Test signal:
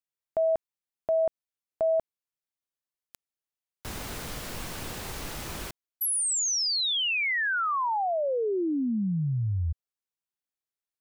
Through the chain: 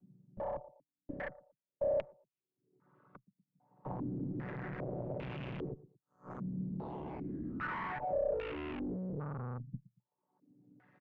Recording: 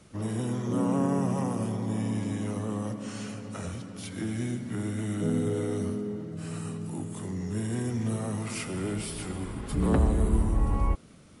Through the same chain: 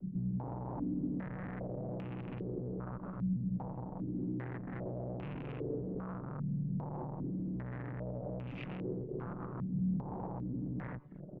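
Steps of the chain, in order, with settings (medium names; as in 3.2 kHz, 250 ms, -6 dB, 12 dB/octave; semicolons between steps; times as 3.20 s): vocoder on a held chord minor triad, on B2; reverb removal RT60 0.54 s; compression 5:1, threshold -38 dBFS; on a send: feedback delay 116 ms, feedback 25%, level -22 dB; on the sum: upward compressor 4:1, threshold -58 dBFS; dynamic bell 250 Hz, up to -5 dB, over -52 dBFS, Q 0.98; Chebyshev shaper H 4 -7 dB, 6 -7 dB, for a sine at -27.5 dBFS; high-pass 150 Hz 12 dB/octave; tilt EQ -3.5 dB/octave; valve stage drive 46 dB, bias 0.65; step-sequenced low-pass 2.5 Hz 200–2700 Hz; trim +6 dB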